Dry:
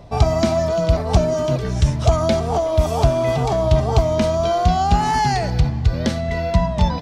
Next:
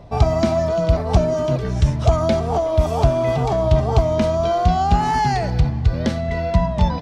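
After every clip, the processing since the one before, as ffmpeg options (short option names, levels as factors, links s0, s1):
-af "highshelf=f=3600:g=-6.5"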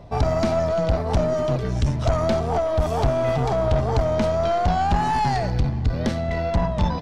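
-af "aeval=exprs='(tanh(5.01*val(0)+0.4)-tanh(0.4))/5.01':c=same"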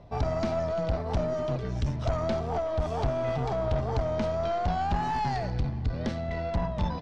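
-af "lowpass=6200,volume=0.422"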